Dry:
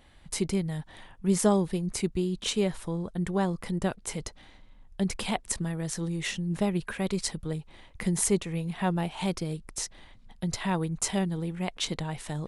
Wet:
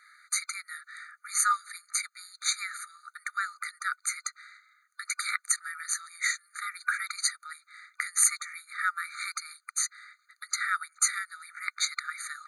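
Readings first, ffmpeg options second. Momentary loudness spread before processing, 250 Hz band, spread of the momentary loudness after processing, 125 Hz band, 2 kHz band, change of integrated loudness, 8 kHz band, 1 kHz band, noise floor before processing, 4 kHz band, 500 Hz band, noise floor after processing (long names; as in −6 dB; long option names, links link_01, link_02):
10 LU, below −40 dB, 16 LU, below −40 dB, +8.5 dB, 0.0 dB, +6.0 dB, +2.0 dB, −54 dBFS, +0.5 dB, below −40 dB, −72 dBFS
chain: -af "superequalizer=10b=2.24:13b=0.447,afftfilt=real='re*eq(mod(floor(b*sr/1024/1200),2),1)':imag='im*eq(mod(floor(b*sr/1024/1200),2),1)':win_size=1024:overlap=0.75,volume=8.5dB"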